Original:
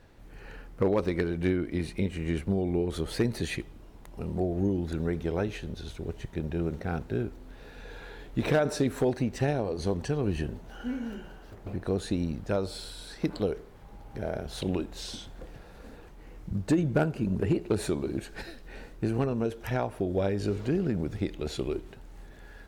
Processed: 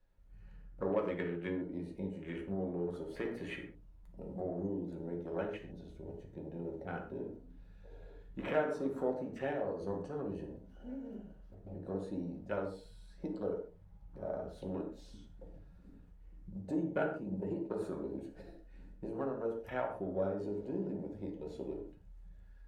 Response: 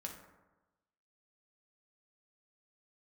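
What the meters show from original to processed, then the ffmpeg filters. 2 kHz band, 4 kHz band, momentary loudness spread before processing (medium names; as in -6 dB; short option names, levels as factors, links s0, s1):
-8.0 dB, -17.5 dB, 19 LU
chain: -filter_complex "[0:a]bandreject=f=60:t=h:w=6,bandreject=f=120:t=h:w=6,bandreject=f=180:t=h:w=6,bandreject=f=240:t=h:w=6,bandreject=f=300:t=h:w=6,bandreject=f=360:t=h:w=6,bandreject=f=420:t=h:w=6,bandreject=f=480:t=h:w=6,afwtdn=0.0112,acrossover=split=280|1400[s0][s1][s2];[s0]acompressor=threshold=0.00562:ratio=5[s3];[s3][s1][s2]amix=inputs=3:normalize=0[s4];[1:a]atrim=start_sample=2205,atrim=end_sample=6615[s5];[s4][s5]afir=irnorm=-1:irlink=0,volume=0.708"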